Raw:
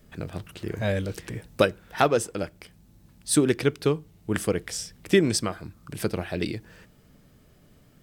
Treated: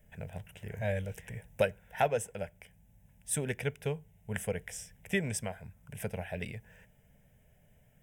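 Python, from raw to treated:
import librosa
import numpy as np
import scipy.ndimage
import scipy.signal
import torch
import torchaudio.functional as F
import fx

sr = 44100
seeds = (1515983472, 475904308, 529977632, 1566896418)

y = fx.fixed_phaser(x, sr, hz=1200.0, stages=6)
y = y * 10.0 ** (-5.0 / 20.0)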